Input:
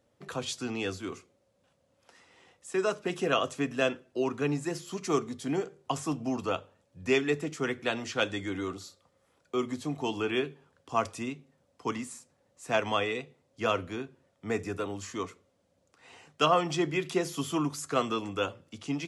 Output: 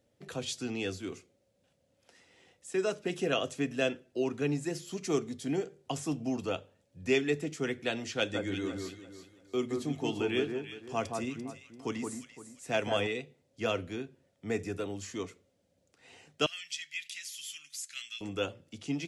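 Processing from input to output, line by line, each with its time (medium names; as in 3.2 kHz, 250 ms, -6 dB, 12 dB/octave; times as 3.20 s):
8.17–13.07 s: echo whose repeats swap between lows and highs 171 ms, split 1.6 kHz, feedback 53%, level -4 dB
16.46–18.21 s: inverse Chebyshev high-pass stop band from 1 kHz
whole clip: peaking EQ 1.1 kHz -10 dB 0.76 oct; trim -1 dB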